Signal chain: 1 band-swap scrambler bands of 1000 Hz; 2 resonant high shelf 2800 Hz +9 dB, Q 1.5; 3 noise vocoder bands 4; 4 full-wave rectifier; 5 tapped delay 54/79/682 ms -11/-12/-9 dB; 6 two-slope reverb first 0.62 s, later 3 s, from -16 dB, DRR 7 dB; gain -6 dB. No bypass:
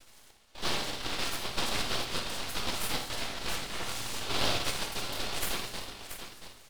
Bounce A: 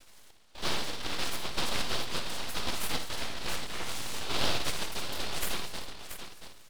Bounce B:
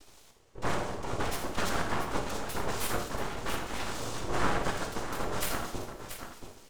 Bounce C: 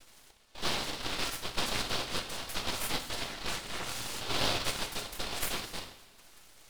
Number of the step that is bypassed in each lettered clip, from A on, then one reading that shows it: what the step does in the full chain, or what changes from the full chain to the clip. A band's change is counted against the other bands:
6, crest factor change -1.5 dB; 1, 4 kHz band -12.5 dB; 5, echo-to-direct -2.5 dB to -7.0 dB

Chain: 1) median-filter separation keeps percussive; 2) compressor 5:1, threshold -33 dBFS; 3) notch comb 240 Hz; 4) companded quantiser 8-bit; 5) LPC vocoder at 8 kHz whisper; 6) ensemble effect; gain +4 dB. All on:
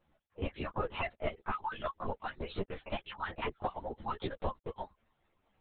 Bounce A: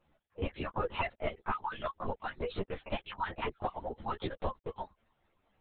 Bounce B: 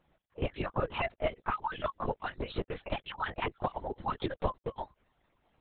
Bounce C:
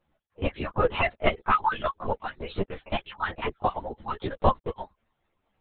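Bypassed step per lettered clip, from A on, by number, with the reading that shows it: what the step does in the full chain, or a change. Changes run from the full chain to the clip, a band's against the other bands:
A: 3, loudness change +1.0 LU; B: 6, crest factor change +2.0 dB; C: 2, mean gain reduction 7.5 dB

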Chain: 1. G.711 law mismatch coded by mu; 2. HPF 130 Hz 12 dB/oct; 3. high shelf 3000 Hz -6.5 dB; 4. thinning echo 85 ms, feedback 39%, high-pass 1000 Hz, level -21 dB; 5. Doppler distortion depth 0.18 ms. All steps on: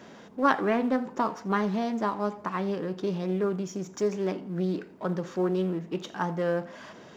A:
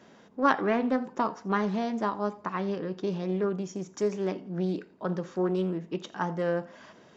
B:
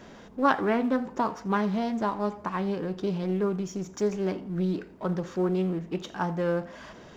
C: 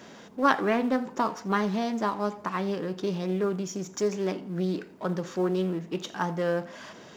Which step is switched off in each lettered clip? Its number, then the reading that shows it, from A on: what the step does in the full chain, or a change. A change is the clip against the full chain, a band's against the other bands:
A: 1, distortion -23 dB; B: 2, 125 Hz band +1.5 dB; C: 3, 4 kHz band +4.0 dB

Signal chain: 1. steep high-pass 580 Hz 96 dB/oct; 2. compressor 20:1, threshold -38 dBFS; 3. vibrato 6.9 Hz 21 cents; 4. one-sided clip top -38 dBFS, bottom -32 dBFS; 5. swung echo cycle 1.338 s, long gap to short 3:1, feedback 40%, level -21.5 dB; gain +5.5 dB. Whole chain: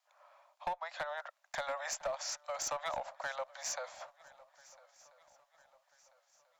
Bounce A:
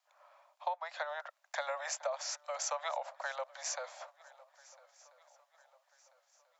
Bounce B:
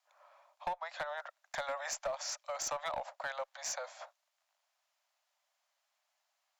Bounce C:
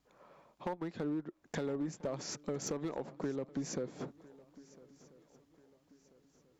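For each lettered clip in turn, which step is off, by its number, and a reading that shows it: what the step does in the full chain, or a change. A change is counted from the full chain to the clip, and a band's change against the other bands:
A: 4, distortion -16 dB; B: 5, echo-to-direct -19.5 dB to none; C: 1, 250 Hz band +33.0 dB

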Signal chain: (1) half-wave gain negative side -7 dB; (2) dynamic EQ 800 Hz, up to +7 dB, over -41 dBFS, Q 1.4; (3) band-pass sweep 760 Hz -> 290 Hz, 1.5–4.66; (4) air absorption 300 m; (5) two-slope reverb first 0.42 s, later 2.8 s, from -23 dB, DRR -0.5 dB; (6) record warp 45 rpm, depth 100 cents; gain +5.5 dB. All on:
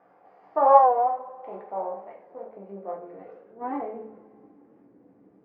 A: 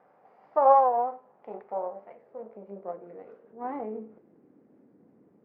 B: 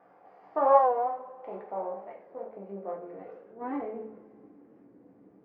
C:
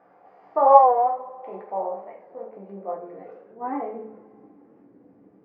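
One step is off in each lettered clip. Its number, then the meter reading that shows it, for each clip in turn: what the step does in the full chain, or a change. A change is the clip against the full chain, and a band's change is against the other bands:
5, loudness change -4.0 LU; 2, 1 kHz band -5.0 dB; 1, distortion -9 dB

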